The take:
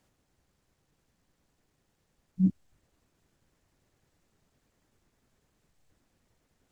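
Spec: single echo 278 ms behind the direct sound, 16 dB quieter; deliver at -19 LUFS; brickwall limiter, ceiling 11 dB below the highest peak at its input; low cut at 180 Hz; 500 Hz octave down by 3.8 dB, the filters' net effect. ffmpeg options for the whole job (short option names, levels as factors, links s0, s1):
-af "highpass=180,equalizer=f=500:t=o:g=-6.5,alimiter=level_in=1.88:limit=0.0631:level=0:latency=1,volume=0.531,aecho=1:1:278:0.158,volume=16.8"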